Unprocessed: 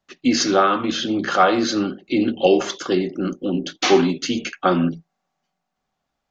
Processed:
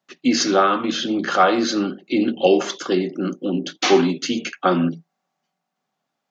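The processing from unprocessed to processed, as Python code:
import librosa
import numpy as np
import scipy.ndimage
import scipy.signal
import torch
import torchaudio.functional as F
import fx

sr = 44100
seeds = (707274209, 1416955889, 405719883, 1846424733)

y = scipy.signal.sosfilt(scipy.signal.butter(4, 140.0, 'highpass', fs=sr, output='sos'), x)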